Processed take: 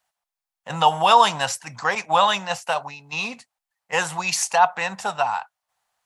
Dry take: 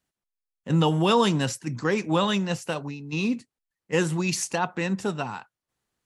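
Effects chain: 1.95–2.67 s: expander -27 dBFS; resonant low shelf 500 Hz -14 dB, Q 3; trim +5.5 dB

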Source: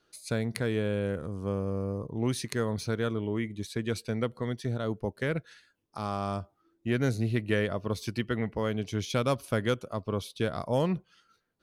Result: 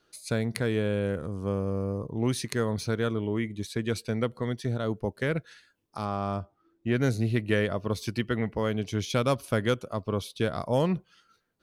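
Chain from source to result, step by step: 6.04–6.95 s: low-pass 2.3 kHz -> 3.8 kHz 6 dB/octave; trim +2 dB

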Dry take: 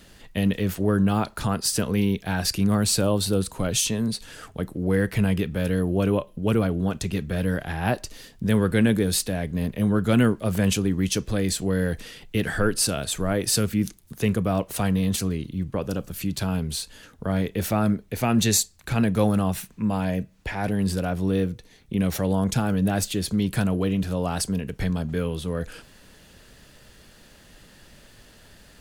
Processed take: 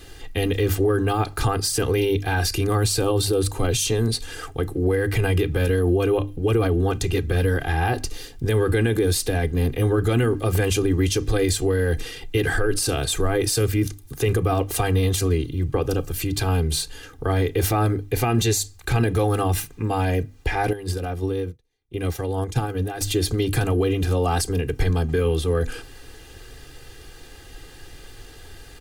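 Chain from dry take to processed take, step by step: hum notches 50/100/150/200/250/300 Hz; comb 2.5 ms, depth 97%; peak limiter -17 dBFS, peak gain reduction 10.5 dB; bass shelf 360 Hz +4 dB; 20.73–23.01 s: upward expansion 2.5:1, over -40 dBFS; trim +3 dB

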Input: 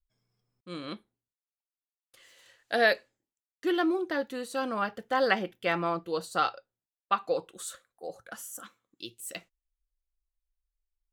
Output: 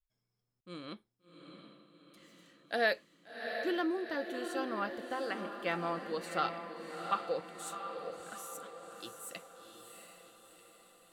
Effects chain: 5.02–5.58 s: compression, threshold -28 dBFS, peak gain reduction 9 dB; echo that smears into a reverb 714 ms, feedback 53%, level -7 dB; trim -6.5 dB

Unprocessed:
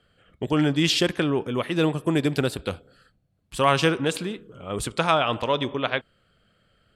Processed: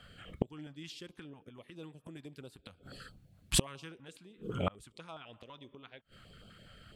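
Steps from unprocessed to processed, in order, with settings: inverted gate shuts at -22 dBFS, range -34 dB; step-sequenced notch 12 Hz 380–1800 Hz; trim +9 dB

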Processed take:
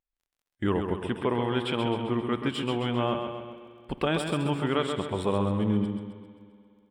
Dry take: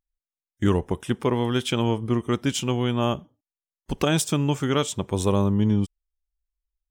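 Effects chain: bass shelf 240 Hz -9 dB; in parallel at -2.5 dB: peak limiter -22.5 dBFS, peak gain reduction 11 dB; on the sum: boxcar filter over 7 samples; crackle 22 per s -56 dBFS; feedback delay 132 ms, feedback 50%, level -6.5 dB; spring tank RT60 2.8 s, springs 59 ms, chirp 25 ms, DRR 14.5 dB; trim -4 dB

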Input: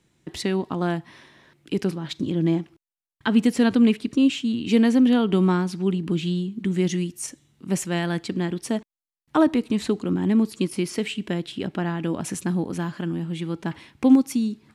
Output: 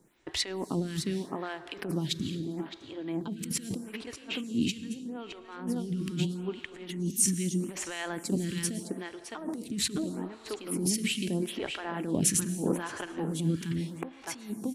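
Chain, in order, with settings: delay 612 ms -10 dB; compressor with a negative ratio -29 dBFS, ratio -1; on a send at -13 dB: reverberation RT60 3.5 s, pre-delay 98 ms; on the sum: harmonic tremolo 3.7 Hz, depth 50%, crossover 1.5 kHz; treble shelf 6.8 kHz +8 dB; lamp-driven phase shifter 0.79 Hz

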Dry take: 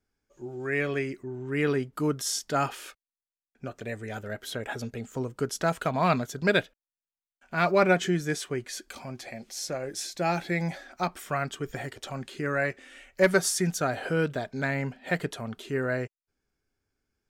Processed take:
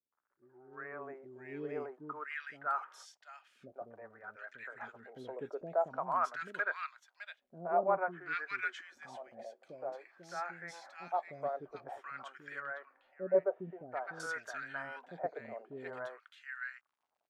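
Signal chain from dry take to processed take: crackle 88 per s -49 dBFS; three bands offset in time lows, mids, highs 120/730 ms, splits 390/1600 Hz; wah-wah 0.5 Hz 570–1600 Hz, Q 2.8; 12.60–14.20 s: tape spacing loss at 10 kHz 32 dB

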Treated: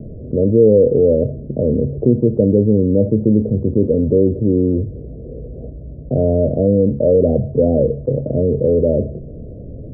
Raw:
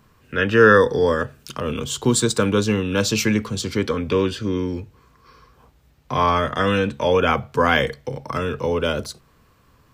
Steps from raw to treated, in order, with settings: steep low-pass 650 Hz 96 dB/octave; level flattener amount 50%; trim +2.5 dB

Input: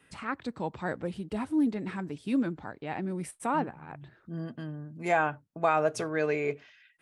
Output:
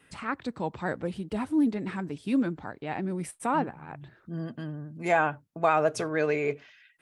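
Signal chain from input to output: vibrato 13 Hz 32 cents; trim +2 dB

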